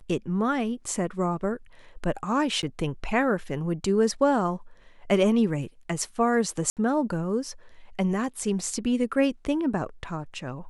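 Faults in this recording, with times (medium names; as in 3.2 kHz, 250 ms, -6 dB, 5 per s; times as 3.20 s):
2.62–2.63 s: dropout 9.7 ms
6.70–6.77 s: dropout 68 ms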